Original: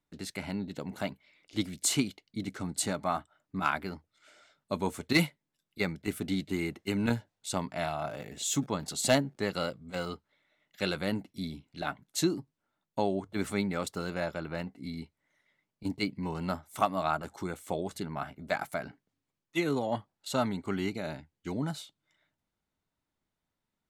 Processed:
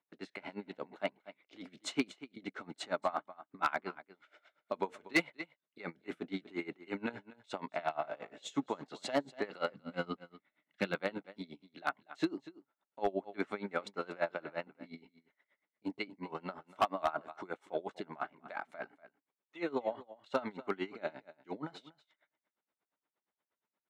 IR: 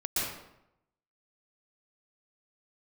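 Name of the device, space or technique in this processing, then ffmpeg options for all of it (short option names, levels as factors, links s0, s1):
helicopter radio: -filter_complex "[0:a]bandreject=f=4600:w=25,asettb=1/sr,asplit=3[s0][s1][s2];[s0]atrim=end=9.744[s3];[s1]atrim=start=9.74:end=10.95,asetpts=PTS-STARTPTS,afade=t=in:d=0.004:c=qsin,afade=t=out:st=1.206:d=0.004:c=qsin,lowshelf=f=320:t=q:w=1.5:g=8.5[s4];[s2]atrim=start=10.946[s5];[s3][s4]acrossfade=d=0.004:c1=hsin:c2=qsin[s6];[s6][s5]acrossfade=d=0.004:c1=qsin:c2=hsin,highpass=370,lowpass=2600,aecho=1:1:241:0.141,aeval=exprs='val(0)*pow(10,-23*(0.5-0.5*cos(2*PI*8.5*n/s))/20)':c=same,asoftclip=type=hard:threshold=0.0562,volume=1.58"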